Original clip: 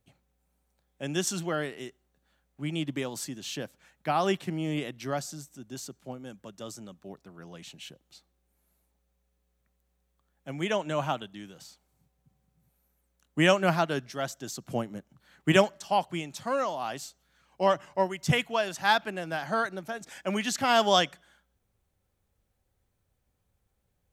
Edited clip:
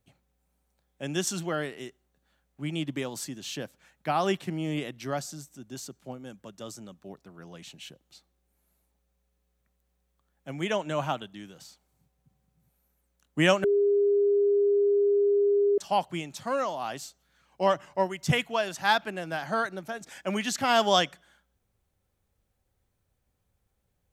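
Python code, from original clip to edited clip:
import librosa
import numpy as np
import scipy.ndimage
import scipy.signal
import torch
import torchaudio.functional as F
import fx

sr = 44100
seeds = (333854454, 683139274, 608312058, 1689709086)

y = fx.edit(x, sr, fx.bleep(start_s=13.64, length_s=2.14, hz=405.0, db=-19.5), tone=tone)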